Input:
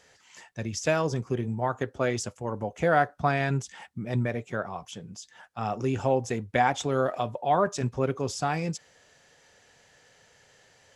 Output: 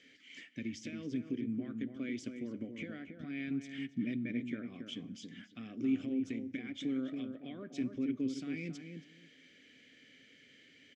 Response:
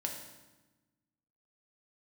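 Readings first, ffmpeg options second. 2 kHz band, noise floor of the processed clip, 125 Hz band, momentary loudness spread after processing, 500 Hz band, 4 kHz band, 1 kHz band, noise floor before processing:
-15.0 dB, -62 dBFS, -17.5 dB, 23 LU, -20.0 dB, -9.5 dB, -34.0 dB, -61 dBFS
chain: -filter_complex "[0:a]acompressor=threshold=0.0355:ratio=6,alimiter=level_in=1.68:limit=0.0631:level=0:latency=1:release=500,volume=0.596,asplit=3[s0][s1][s2];[s0]bandpass=f=270:t=q:w=8,volume=1[s3];[s1]bandpass=f=2290:t=q:w=8,volume=0.501[s4];[s2]bandpass=f=3010:t=q:w=8,volume=0.355[s5];[s3][s4][s5]amix=inputs=3:normalize=0,asplit=2[s6][s7];[s7]adelay=276,lowpass=f=1300:p=1,volume=0.531,asplit=2[s8][s9];[s9]adelay=276,lowpass=f=1300:p=1,volume=0.18,asplit=2[s10][s11];[s11]adelay=276,lowpass=f=1300:p=1,volume=0.18[s12];[s6][s8][s10][s12]amix=inputs=4:normalize=0,asplit=2[s13][s14];[1:a]atrim=start_sample=2205[s15];[s14][s15]afir=irnorm=-1:irlink=0,volume=0.141[s16];[s13][s16]amix=inputs=2:normalize=0,volume=3.98"

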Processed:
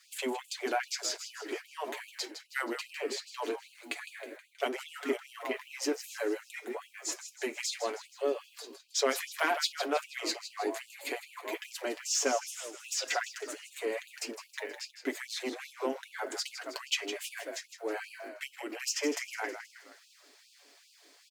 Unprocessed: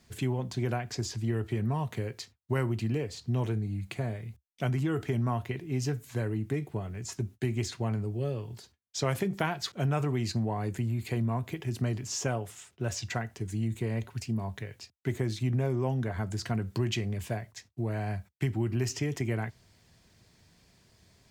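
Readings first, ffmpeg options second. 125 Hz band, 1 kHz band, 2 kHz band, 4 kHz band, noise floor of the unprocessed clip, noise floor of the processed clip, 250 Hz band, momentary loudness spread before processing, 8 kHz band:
under -40 dB, +1.5 dB, +4.0 dB, +5.0 dB, -66 dBFS, -62 dBFS, -8.0 dB, 7 LU, +5.0 dB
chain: -filter_complex "[0:a]equalizer=f=940:w=4.9:g=-2.5,aecho=1:1:7:0.59,acrossover=split=250[s0][s1];[s0]asoftclip=type=hard:threshold=0.0422[s2];[s2][s1]amix=inputs=2:normalize=0,asplit=6[s3][s4][s5][s6][s7][s8];[s4]adelay=159,afreqshift=-54,volume=0.316[s9];[s5]adelay=318,afreqshift=-108,volume=0.158[s10];[s6]adelay=477,afreqshift=-162,volume=0.0794[s11];[s7]adelay=636,afreqshift=-216,volume=0.0394[s12];[s8]adelay=795,afreqshift=-270,volume=0.0197[s13];[s3][s9][s10][s11][s12][s13]amix=inputs=6:normalize=0,asplit=2[s14][s15];[s15]asoftclip=type=tanh:threshold=0.0376,volume=0.596[s16];[s14][s16]amix=inputs=2:normalize=0,afftfilt=real='re*gte(b*sr/1024,230*pow(2500/230,0.5+0.5*sin(2*PI*2.5*pts/sr)))':imag='im*gte(b*sr/1024,230*pow(2500/230,0.5+0.5*sin(2*PI*2.5*pts/sr)))':win_size=1024:overlap=0.75"

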